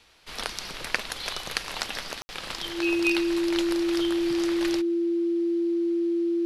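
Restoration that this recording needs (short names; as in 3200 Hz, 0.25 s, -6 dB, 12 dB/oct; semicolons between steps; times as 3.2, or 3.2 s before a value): notch 340 Hz, Q 30; room tone fill 2.22–2.29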